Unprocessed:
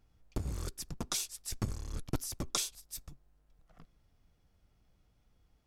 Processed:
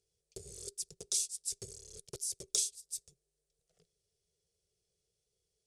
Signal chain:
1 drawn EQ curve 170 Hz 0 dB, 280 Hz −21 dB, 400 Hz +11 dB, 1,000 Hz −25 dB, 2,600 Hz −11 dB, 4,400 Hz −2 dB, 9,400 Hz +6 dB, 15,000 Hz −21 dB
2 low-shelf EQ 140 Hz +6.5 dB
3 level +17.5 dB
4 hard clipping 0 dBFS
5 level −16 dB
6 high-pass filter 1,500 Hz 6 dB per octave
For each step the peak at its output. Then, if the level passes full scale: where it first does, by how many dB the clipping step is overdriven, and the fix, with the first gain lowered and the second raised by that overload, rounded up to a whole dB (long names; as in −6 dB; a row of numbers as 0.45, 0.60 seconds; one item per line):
−14.0, −14.0, +3.5, 0.0, −16.0, −14.5 dBFS
step 3, 3.5 dB
step 3 +13.5 dB, step 5 −12 dB